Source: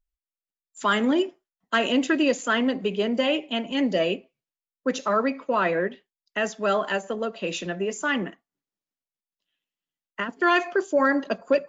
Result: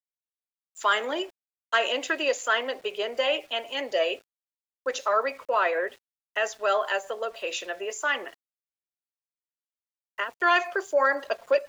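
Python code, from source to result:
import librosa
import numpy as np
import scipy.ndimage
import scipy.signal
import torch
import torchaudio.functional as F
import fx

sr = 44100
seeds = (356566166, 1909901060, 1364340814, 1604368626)

y = scipy.signal.sosfilt(scipy.signal.butter(4, 470.0, 'highpass', fs=sr, output='sos'), x)
y = np.where(np.abs(y) >= 10.0 ** (-50.5 / 20.0), y, 0.0)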